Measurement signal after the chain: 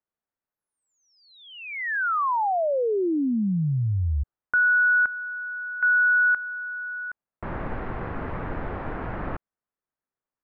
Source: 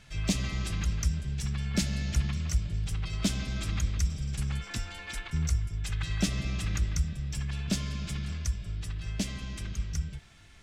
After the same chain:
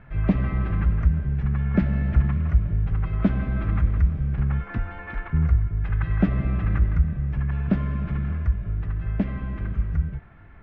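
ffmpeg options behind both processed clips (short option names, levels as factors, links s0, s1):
-af "lowpass=f=1700:w=0.5412,lowpass=f=1700:w=1.3066,volume=2.66"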